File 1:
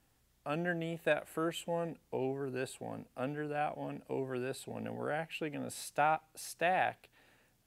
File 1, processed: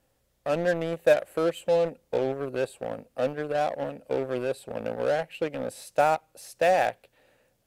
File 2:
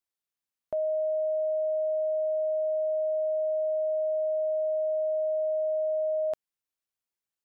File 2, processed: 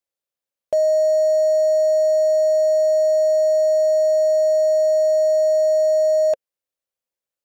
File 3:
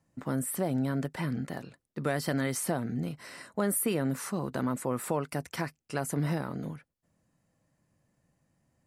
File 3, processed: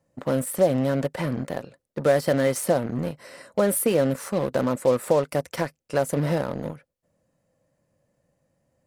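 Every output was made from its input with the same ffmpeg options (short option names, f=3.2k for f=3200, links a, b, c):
-filter_complex "[0:a]equalizer=f=540:t=o:w=0.47:g=12.5,asplit=2[a][b];[b]acrusher=bits=4:mix=0:aa=0.5,volume=-4dB[c];[a][c]amix=inputs=2:normalize=0"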